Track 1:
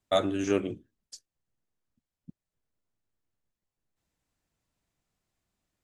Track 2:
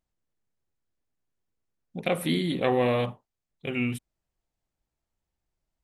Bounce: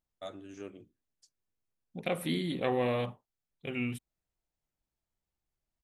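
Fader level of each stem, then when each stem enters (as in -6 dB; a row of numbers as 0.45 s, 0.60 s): -18.0 dB, -6.0 dB; 0.10 s, 0.00 s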